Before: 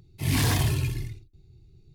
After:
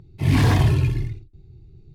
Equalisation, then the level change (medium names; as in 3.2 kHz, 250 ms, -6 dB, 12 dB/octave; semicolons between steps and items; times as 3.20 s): low-pass 1.5 kHz 6 dB/octave; +7.5 dB